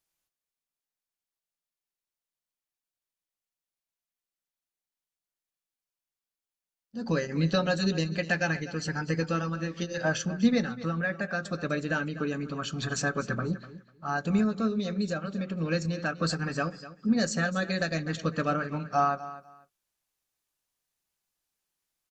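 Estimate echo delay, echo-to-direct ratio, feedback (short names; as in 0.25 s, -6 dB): 0.248 s, -15.5 dB, 20%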